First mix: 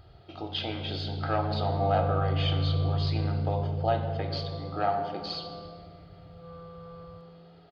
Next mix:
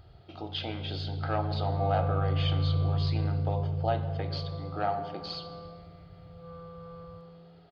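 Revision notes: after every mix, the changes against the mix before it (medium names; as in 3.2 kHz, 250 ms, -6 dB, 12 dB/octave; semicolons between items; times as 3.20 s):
speech: send -6.0 dB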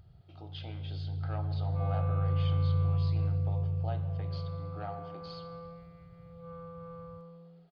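speech -11.5 dB; first sound: send off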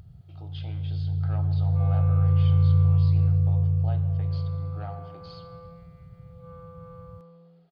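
first sound +10.5 dB; master: add bass shelf 67 Hz -5 dB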